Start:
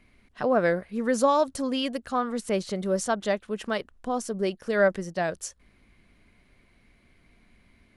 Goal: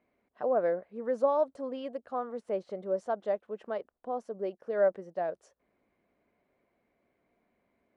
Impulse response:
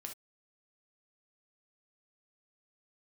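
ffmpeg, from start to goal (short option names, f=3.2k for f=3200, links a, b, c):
-af "bandpass=f=590:t=q:w=1.5:csg=0,volume=-3dB"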